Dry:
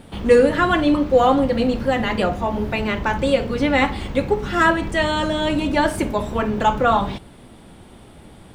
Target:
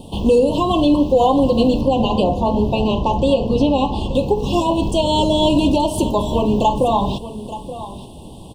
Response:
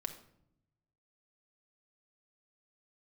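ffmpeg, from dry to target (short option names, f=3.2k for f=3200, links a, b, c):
-filter_complex "[0:a]asettb=1/sr,asplit=3[a][b][c];[a]atrim=end=1.814[d];[b]atrim=start=1.81:end=4.15,asetpts=PTS-STARTPTS,afade=t=in:d=0.004:c=qsin,afade=t=out:st=2.336:d=0.004:c=qsin,lowpass=f=3.7k:p=1[e];[c]atrim=start=4.146[f];[d][e]acrossfade=d=0.004:c1=hsin:c2=qsin[g];[g][f]acrossfade=d=0.004:c1=qsin:c2=hsin,alimiter=limit=-12.5dB:level=0:latency=1:release=154,asuperstop=centerf=1700:order=20:qfactor=1.1,aecho=1:1:876:0.2,volume=6.5dB"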